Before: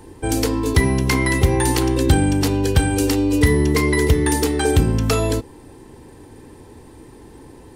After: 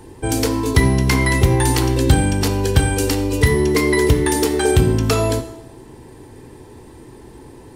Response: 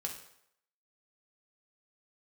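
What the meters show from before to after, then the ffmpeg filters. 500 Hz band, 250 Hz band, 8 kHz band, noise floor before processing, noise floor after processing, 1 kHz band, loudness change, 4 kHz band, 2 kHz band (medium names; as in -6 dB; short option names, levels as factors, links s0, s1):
+2.0 dB, 0.0 dB, +1.5 dB, -44 dBFS, -41 dBFS, +1.5 dB, +1.0 dB, +2.0 dB, +1.5 dB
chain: -filter_complex "[0:a]asplit=2[s0][s1];[1:a]atrim=start_sample=2205,asetrate=33075,aresample=44100[s2];[s1][s2]afir=irnorm=-1:irlink=0,volume=0.631[s3];[s0][s3]amix=inputs=2:normalize=0,volume=0.75"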